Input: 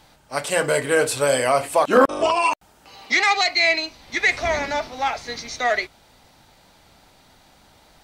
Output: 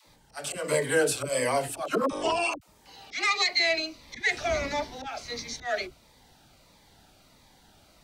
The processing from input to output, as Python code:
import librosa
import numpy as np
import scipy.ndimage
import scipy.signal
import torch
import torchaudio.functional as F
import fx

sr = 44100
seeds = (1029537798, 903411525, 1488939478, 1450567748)

y = fx.auto_swell(x, sr, attack_ms=156.0)
y = fx.dispersion(y, sr, late='lows', ms=74.0, hz=370.0)
y = fx.notch_cascade(y, sr, direction='falling', hz=1.5)
y = y * librosa.db_to_amplitude(-3.5)